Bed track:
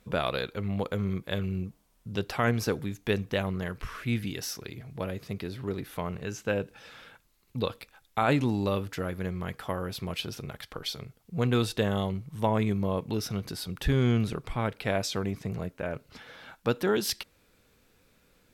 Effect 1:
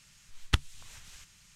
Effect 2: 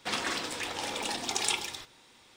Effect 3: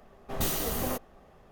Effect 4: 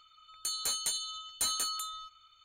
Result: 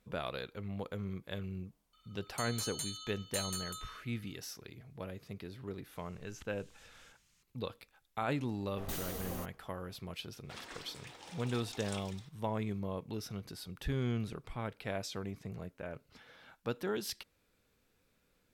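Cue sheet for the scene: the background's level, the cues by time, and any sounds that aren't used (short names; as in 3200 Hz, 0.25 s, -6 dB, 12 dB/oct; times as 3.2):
bed track -10 dB
1.93 add 4 -7.5 dB
5.88 add 1 -12.5 dB + compressor 3:1, threshold -42 dBFS
8.48 add 3 -11 dB
10.44 add 2 -17 dB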